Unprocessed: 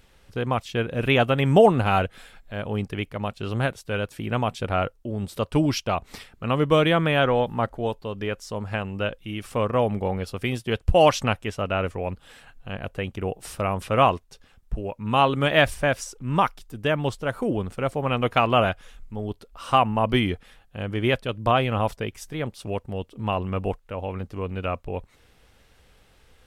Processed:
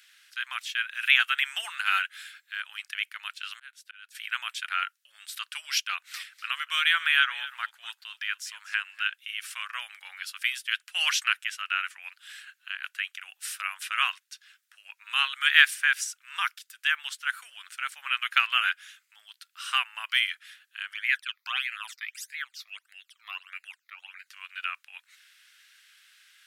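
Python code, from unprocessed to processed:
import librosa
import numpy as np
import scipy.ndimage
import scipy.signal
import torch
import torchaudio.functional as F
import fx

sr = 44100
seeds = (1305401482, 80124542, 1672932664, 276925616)

y = fx.auto_swell(x, sr, attack_ms=797.0, at=(3.19, 4.15))
y = fx.echo_single(y, sr, ms=245, db=-16.5, at=(6.06, 9.14), fade=0.02)
y = fx.phaser_stages(y, sr, stages=12, low_hz=150.0, high_hz=1100.0, hz=1.6, feedback_pct=25, at=(20.93, 24.27))
y = scipy.signal.sosfilt(scipy.signal.ellip(4, 1.0, 80, 1500.0, 'highpass', fs=sr, output='sos'), y)
y = fx.dynamic_eq(y, sr, hz=4800.0, q=1.3, threshold_db=-46.0, ratio=4.0, max_db=-3)
y = y * 10.0 ** (5.5 / 20.0)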